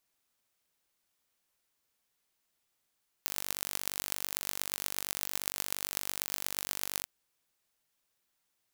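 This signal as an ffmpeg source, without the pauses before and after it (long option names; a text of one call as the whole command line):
ffmpeg -f lavfi -i "aevalsrc='0.668*eq(mod(n,906),0)*(0.5+0.5*eq(mod(n,5436),0))':duration=3.79:sample_rate=44100" out.wav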